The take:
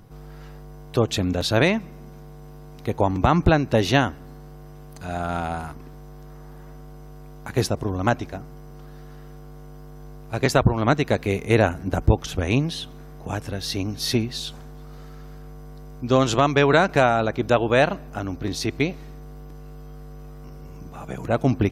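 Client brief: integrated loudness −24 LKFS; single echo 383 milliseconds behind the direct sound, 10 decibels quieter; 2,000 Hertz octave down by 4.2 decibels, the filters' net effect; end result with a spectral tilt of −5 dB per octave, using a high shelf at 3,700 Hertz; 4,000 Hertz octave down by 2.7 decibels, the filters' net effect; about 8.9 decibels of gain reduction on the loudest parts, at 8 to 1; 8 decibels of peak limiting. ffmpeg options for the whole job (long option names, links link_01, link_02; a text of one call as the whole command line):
ffmpeg -i in.wav -af "equalizer=frequency=2000:width_type=o:gain=-6.5,highshelf=frequency=3700:gain=8.5,equalizer=frequency=4000:width_type=o:gain=-7,acompressor=threshold=-20dB:ratio=8,alimiter=limit=-17dB:level=0:latency=1,aecho=1:1:383:0.316,volume=6dB" out.wav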